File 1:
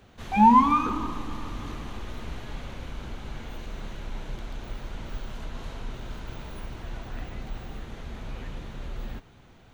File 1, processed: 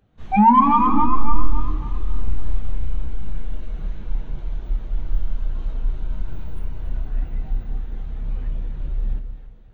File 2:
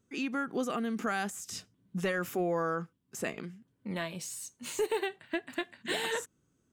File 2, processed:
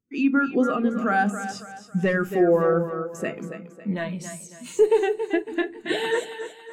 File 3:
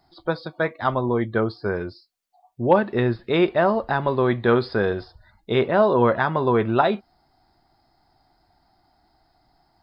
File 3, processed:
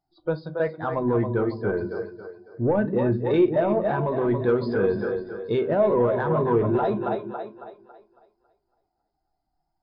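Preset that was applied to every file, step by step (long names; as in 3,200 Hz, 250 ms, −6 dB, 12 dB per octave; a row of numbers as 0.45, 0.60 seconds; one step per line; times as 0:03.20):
on a send: echo with a time of its own for lows and highs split 310 Hz, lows 181 ms, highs 276 ms, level −7 dB
on the sum: brickwall limiter −13.5 dBFS
soft clipping −18 dBFS
tape wow and flutter 16 cents
rectangular room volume 260 cubic metres, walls furnished, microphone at 0.53 metres
every bin expanded away from the loudest bin 1.5 to 1
loudness normalisation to −24 LKFS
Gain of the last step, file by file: +12.0, +11.5, +4.0 decibels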